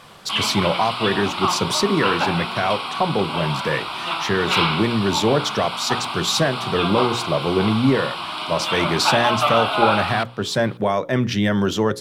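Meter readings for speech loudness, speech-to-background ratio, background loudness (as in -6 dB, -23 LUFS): -21.5 LUFS, 2.0 dB, -23.5 LUFS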